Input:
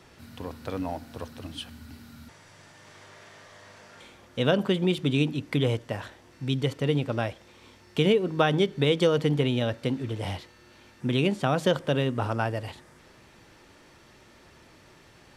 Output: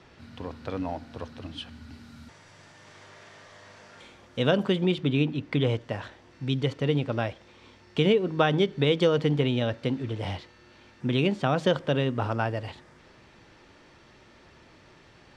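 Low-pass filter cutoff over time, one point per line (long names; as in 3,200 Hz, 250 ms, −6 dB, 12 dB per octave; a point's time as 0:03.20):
0:01.66 4,900 Hz
0:02.21 7,700 Hz
0:04.66 7,700 Hz
0:05.16 3,200 Hz
0:05.90 5,500 Hz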